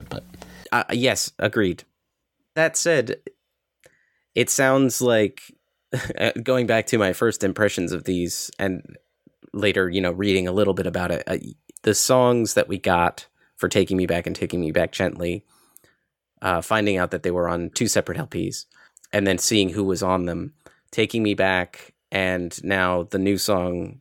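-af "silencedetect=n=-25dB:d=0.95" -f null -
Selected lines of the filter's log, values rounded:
silence_start: 3.27
silence_end: 4.37 | silence_duration: 1.10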